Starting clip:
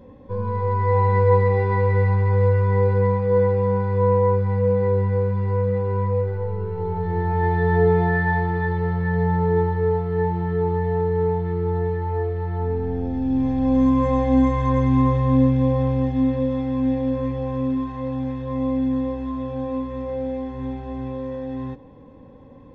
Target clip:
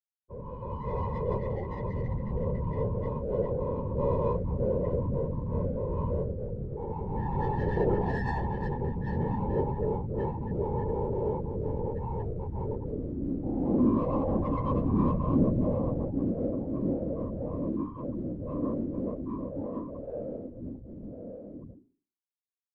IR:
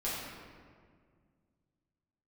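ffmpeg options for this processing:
-af "afftfilt=real='re*gte(hypot(re,im),0.1)':imag='im*gte(hypot(re,im),0.1)':win_size=1024:overlap=0.75,adynamicsmooth=sensitivity=1.5:basefreq=2.4k,adynamicequalizer=threshold=0.00398:dfrequency=1700:dqfactor=3.2:tfrequency=1700:tqfactor=3.2:attack=5:release=100:ratio=0.375:range=2.5:mode=cutabove:tftype=bell,dynaudnorm=f=500:g=13:m=11.5dB,flanger=delay=8.9:depth=1.7:regen=-86:speed=0.36:shape=triangular,bandreject=f=60:t=h:w=6,bandreject=f=120:t=h:w=6,bandreject=f=180:t=h:w=6,bandreject=f=240:t=h:w=6,bandreject=f=300:t=h:w=6,bandreject=f=360:t=h:w=6,afftfilt=real='hypot(re,im)*cos(2*PI*random(0))':imag='hypot(re,im)*sin(2*PI*random(1))':win_size=512:overlap=0.75,volume=-4dB"

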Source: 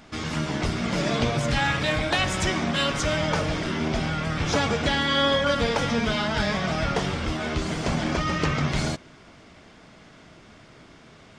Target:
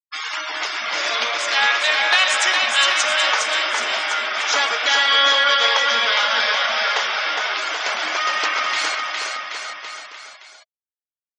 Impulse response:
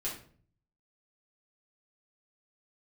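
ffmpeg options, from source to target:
-af "highpass=1.1k,afftfilt=real='re*gte(hypot(re,im),0.0158)':imag='im*gte(hypot(re,im),0.0158)':win_size=1024:overlap=0.75,aecho=1:1:410|779|1111|1410|1679:0.631|0.398|0.251|0.158|0.1,volume=9dB"

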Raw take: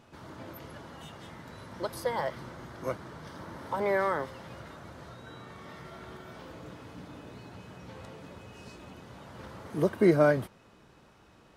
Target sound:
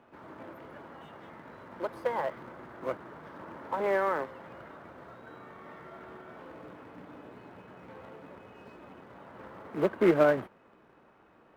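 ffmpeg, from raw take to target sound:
-filter_complex "[0:a]acrusher=bits=2:mode=log:mix=0:aa=0.000001,acrossover=split=210 2400:gain=0.251 1 0.0794[a][b][c];[a][b][c]amix=inputs=3:normalize=0"

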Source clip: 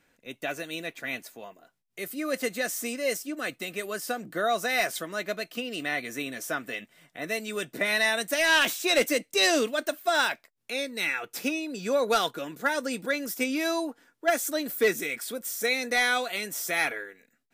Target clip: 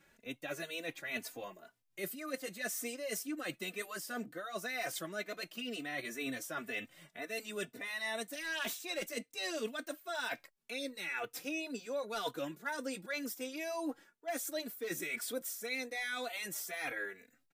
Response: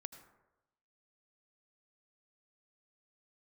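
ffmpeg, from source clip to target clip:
-filter_complex "[0:a]areverse,acompressor=threshold=-36dB:ratio=12,areverse,asplit=2[a][b];[b]adelay=3.2,afreqshift=2[c];[a][c]amix=inputs=2:normalize=1,volume=3dB"

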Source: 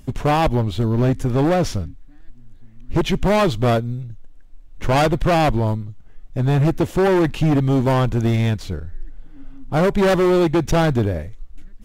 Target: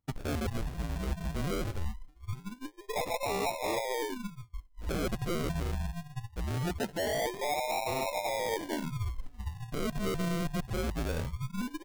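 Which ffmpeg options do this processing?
-af "afftfilt=real='real(if(between(b,1,1008),(2*floor((b-1)/48)+1)*48-b,b),0)':imag='imag(if(between(b,1,1008),(2*floor((b-1)/48)+1)*48-b,b),0)*if(between(b,1,1008),-1,1)':win_size=2048:overlap=0.75,agate=range=-33dB:threshold=-26dB:ratio=3:detection=peak,adynamicequalizer=threshold=0.00891:dfrequency=200:dqfactor=3.8:tfrequency=200:tqfactor=3.8:attack=5:release=100:ratio=0.375:range=1.5:mode=cutabove:tftype=bell,areverse,acompressor=threshold=-31dB:ratio=8,areverse,acrusher=samples=40:mix=1:aa=0.000001:lfo=1:lforange=24:lforate=0.22"

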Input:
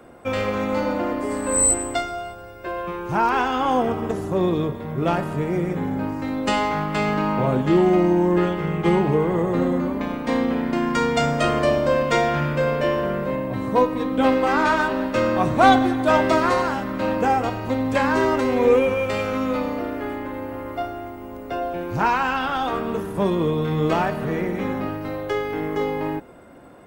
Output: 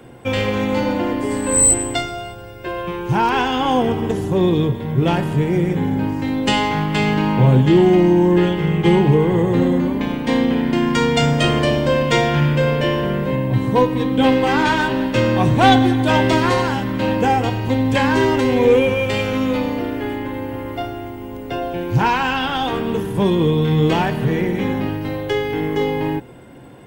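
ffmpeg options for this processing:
-af "acontrast=31,equalizer=f=125:t=o:w=0.33:g=11,equalizer=f=630:t=o:w=0.33:g=-8,equalizer=f=1.25k:t=o:w=0.33:g=-10,equalizer=f=3.15k:t=o:w=0.33:g=6"

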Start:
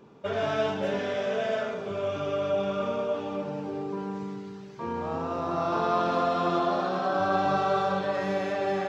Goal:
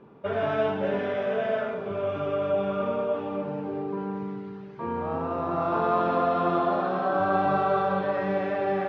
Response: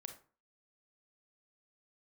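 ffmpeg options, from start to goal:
-filter_complex "[0:a]lowpass=2.4k,asplit=2[a][b];[1:a]atrim=start_sample=2205,lowpass=5.7k[c];[b][c]afir=irnorm=-1:irlink=0,volume=-8dB[d];[a][d]amix=inputs=2:normalize=0"

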